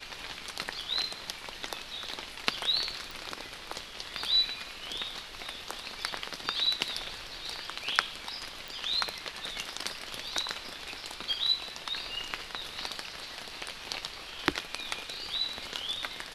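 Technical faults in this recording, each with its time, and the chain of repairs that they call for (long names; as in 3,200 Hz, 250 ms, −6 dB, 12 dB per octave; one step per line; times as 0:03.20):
0:03.11: click
0:08.68: click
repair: click removal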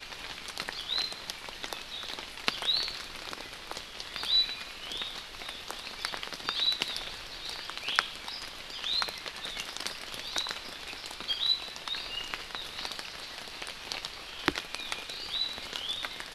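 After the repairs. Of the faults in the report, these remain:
none of them is left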